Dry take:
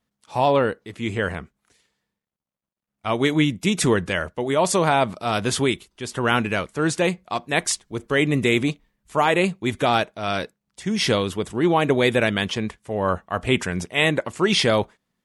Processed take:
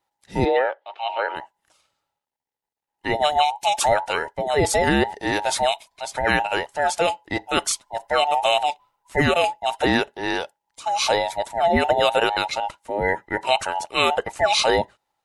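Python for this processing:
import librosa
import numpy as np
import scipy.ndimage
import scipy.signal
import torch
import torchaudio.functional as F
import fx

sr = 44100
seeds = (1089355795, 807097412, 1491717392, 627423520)

y = fx.band_invert(x, sr, width_hz=1000)
y = fx.cheby1_bandpass(y, sr, low_hz=360.0, high_hz=3500.0, order=3, at=(0.44, 1.35), fade=0.02)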